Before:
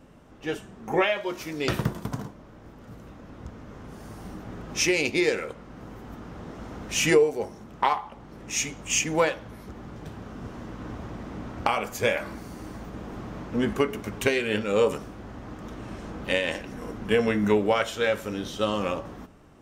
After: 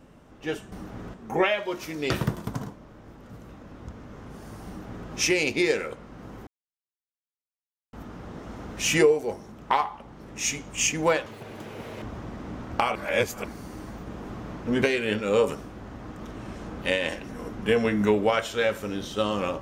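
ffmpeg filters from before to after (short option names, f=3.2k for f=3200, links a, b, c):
-filter_complex "[0:a]asplit=9[a][b][c][d][e][f][g][h][i];[a]atrim=end=0.722[j];[b]atrim=start=4.248:end=4.672[k];[c]atrim=start=0.718:end=6.05,asetpts=PTS-STARTPTS,afade=t=out:st=5.328:d=0.004:c=hsin,apad=pad_dur=1.46[l];[d]atrim=start=6.05:end=9.384,asetpts=PTS-STARTPTS,afade=t=in:d=0.004:c=hsin[m];[e]atrim=start=9.38:end=10.89,asetpts=PTS-STARTPTS,asetrate=87318,aresample=44100[n];[f]atrim=start=10.886:end=11.822[o];[g]atrim=start=11.818:end=12.312,asetpts=PTS-STARTPTS,areverse[p];[h]atrim=start=12.308:end=13.692[q];[i]atrim=start=14.248[r];[j][k]acrossfade=d=0.004:c1=hsin:c2=hsin[s];[l][m]concat=n=2:v=0:a=1[t];[s][t]acrossfade=d=0.004:c1=hsin:c2=hsin[u];[u][n]acrossfade=d=0.004:c1=hsin:c2=hsin[v];[v][o]acrossfade=d=0.004:c1=hsin:c2=hsin[w];[w][p]acrossfade=d=0.004:c1=hsin:c2=hsin[x];[x][q]acrossfade=d=0.004:c1=hsin:c2=hsin[y];[y][r]acrossfade=d=0.004:c1=hsin:c2=hsin"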